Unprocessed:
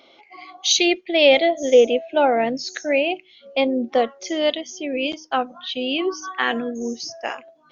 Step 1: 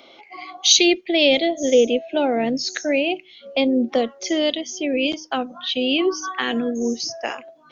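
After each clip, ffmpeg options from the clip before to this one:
ffmpeg -i in.wav -filter_complex "[0:a]acrossover=split=410|3000[link_01][link_02][link_03];[link_02]acompressor=threshold=-29dB:ratio=6[link_04];[link_01][link_04][link_03]amix=inputs=3:normalize=0,volume=4.5dB" out.wav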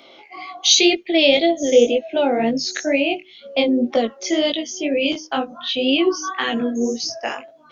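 ffmpeg -i in.wav -af "flanger=delay=17.5:depth=4.7:speed=2,alimiter=level_in=5.5dB:limit=-1dB:release=50:level=0:latency=1,volume=-1dB" out.wav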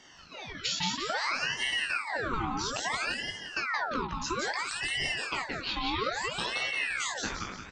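ffmpeg -i in.wav -filter_complex "[0:a]acompressor=threshold=-22dB:ratio=6,asplit=2[link_01][link_02];[link_02]asplit=6[link_03][link_04][link_05][link_06][link_07][link_08];[link_03]adelay=173,afreqshift=61,volume=-3dB[link_09];[link_04]adelay=346,afreqshift=122,volume=-9.9dB[link_10];[link_05]adelay=519,afreqshift=183,volume=-16.9dB[link_11];[link_06]adelay=692,afreqshift=244,volume=-23.8dB[link_12];[link_07]adelay=865,afreqshift=305,volume=-30.7dB[link_13];[link_08]adelay=1038,afreqshift=366,volume=-37.7dB[link_14];[link_09][link_10][link_11][link_12][link_13][link_14]amix=inputs=6:normalize=0[link_15];[link_01][link_15]amix=inputs=2:normalize=0,aeval=exprs='val(0)*sin(2*PI*1500*n/s+1500*0.65/0.6*sin(2*PI*0.6*n/s))':channel_layout=same,volume=-5.5dB" out.wav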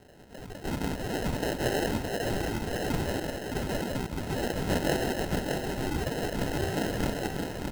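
ffmpeg -i in.wav -af "aexciter=amount=15:drive=7.3:freq=8600,acrusher=samples=38:mix=1:aa=0.000001,aecho=1:1:615:0.562" out.wav

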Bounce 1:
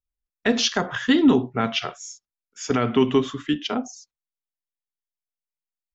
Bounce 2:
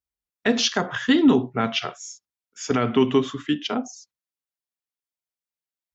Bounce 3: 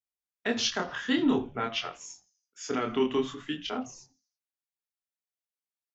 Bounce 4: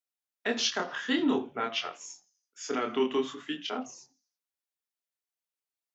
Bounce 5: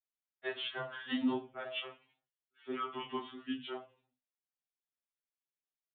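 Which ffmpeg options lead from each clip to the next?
ffmpeg -i in.wav -af "highpass=70" out.wav
ffmpeg -i in.wav -filter_complex "[0:a]lowshelf=frequency=150:gain=-11,flanger=delay=22.5:depth=5.3:speed=0.49,asplit=5[link_01][link_02][link_03][link_04][link_05];[link_02]adelay=82,afreqshift=-130,volume=-22.5dB[link_06];[link_03]adelay=164,afreqshift=-260,volume=-28.2dB[link_07];[link_04]adelay=246,afreqshift=-390,volume=-33.9dB[link_08];[link_05]adelay=328,afreqshift=-520,volume=-39.5dB[link_09];[link_01][link_06][link_07][link_08][link_09]amix=inputs=5:normalize=0,volume=-3.5dB" out.wav
ffmpeg -i in.wav -af "highpass=240" out.wav
ffmpeg -i in.wav -af "aresample=8000,aresample=44100,afreqshift=-42,afftfilt=real='re*2.45*eq(mod(b,6),0)':imag='im*2.45*eq(mod(b,6),0)':win_size=2048:overlap=0.75,volume=-5.5dB" out.wav

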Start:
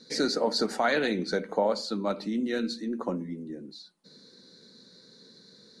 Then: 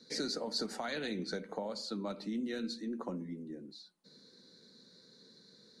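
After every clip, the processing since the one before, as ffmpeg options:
ffmpeg -i in.wav -filter_complex "[0:a]acrossover=split=210|3000[link_01][link_02][link_03];[link_02]acompressor=threshold=-31dB:ratio=6[link_04];[link_01][link_04][link_03]amix=inputs=3:normalize=0,volume=-6dB" out.wav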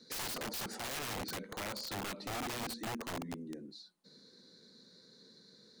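ffmpeg -i in.wav -af "aeval=exprs='(mod(53.1*val(0)+1,2)-1)/53.1':channel_layout=same" out.wav

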